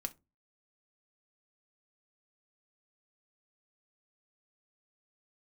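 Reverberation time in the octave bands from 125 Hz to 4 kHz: 0.45, 0.35, 0.30, 0.20, 0.20, 0.15 seconds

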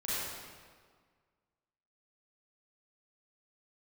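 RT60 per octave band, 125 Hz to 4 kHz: 1.8, 1.8, 1.7, 1.7, 1.5, 1.3 seconds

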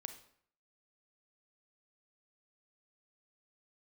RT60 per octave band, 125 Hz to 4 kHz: 0.65, 0.60, 0.60, 0.60, 0.60, 0.50 seconds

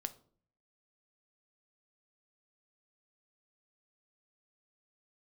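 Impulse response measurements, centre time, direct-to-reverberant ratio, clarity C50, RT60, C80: 4 ms, 10.0 dB, 17.0 dB, 0.50 s, 21.5 dB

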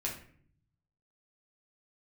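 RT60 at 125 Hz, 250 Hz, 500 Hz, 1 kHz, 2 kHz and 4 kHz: 1.4, 0.90, 0.60, 0.50, 0.55, 0.35 seconds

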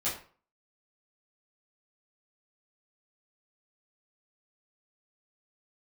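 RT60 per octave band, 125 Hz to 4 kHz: 0.45, 0.40, 0.40, 0.45, 0.35, 0.30 seconds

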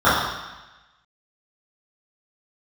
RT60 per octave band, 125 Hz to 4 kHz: 1.1, 1.0, 1.0, 1.1, 1.2, 1.2 seconds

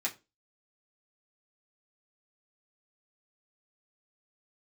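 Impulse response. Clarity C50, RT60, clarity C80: 17.5 dB, 0.25 s, 24.0 dB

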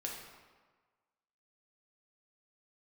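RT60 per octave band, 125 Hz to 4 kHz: 1.3, 1.3, 1.4, 1.5, 1.2, 0.95 seconds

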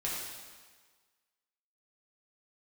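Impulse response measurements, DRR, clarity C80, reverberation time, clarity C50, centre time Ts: −6.5 dB, 2.0 dB, 1.5 s, 0.0 dB, 85 ms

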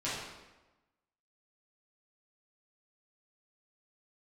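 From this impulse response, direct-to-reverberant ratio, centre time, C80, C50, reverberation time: −10.5 dB, 77 ms, 3.0 dB, 0.0 dB, 1.1 s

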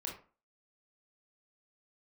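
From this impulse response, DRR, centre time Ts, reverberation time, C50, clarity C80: −1.5 dB, 28 ms, 0.40 s, 6.0 dB, 12.0 dB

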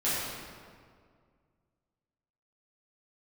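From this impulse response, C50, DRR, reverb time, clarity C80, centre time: −2.5 dB, −12.0 dB, 2.0 s, −0.5 dB, 125 ms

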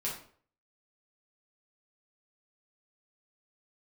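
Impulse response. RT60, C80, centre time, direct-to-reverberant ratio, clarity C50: 0.50 s, 10.0 dB, 32 ms, −5.5 dB, 5.5 dB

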